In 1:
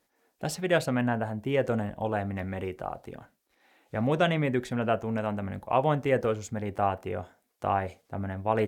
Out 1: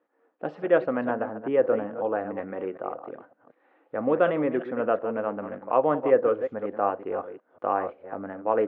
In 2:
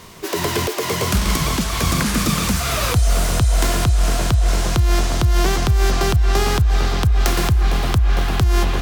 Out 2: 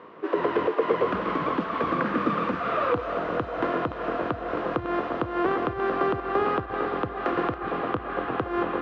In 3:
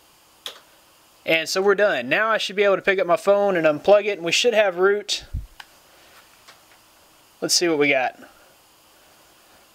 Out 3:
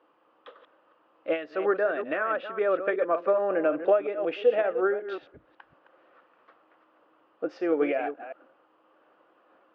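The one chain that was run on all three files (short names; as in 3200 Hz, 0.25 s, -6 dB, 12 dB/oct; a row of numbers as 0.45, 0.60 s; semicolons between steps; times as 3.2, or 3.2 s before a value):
reverse delay 0.185 s, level -10 dB; speaker cabinet 270–2300 Hz, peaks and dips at 300 Hz +8 dB, 500 Hz +9 dB, 1200 Hz +6 dB, 2200 Hz -6 dB; match loudness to -27 LUFS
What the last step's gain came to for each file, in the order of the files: -1.0, -5.0, -10.5 dB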